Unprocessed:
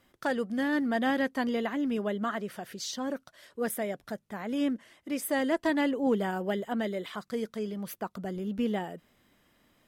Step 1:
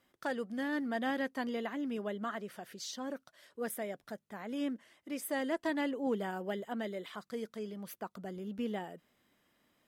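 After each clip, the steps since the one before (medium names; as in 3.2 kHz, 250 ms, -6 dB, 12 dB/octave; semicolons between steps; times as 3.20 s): bass shelf 88 Hz -11.5 dB; trim -6 dB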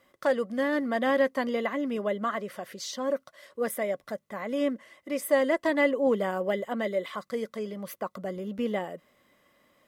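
small resonant body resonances 560/1100/2000 Hz, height 11 dB, ringing for 35 ms; trim +5.5 dB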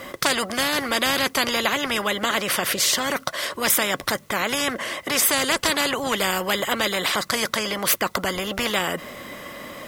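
spectrum-flattening compressor 4:1; trim +9 dB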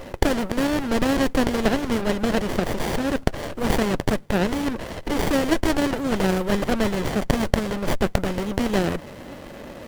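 sliding maximum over 33 samples; trim +1.5 dB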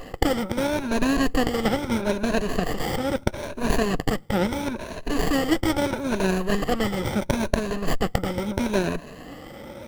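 drifting ripple filter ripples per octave 1.5, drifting +0.76 Hz, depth 12 dB; trim -3 dB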